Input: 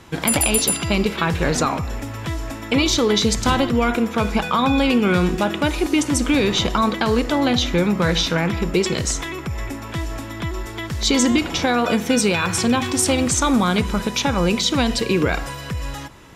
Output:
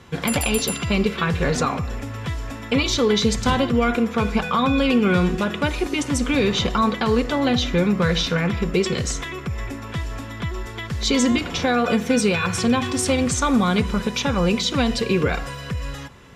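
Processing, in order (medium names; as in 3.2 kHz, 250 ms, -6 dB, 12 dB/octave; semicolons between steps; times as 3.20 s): treble shelf 7.9 kHz -8.5 dB; band-stop 820 Hz, Q 12; comb of notches 320 Hz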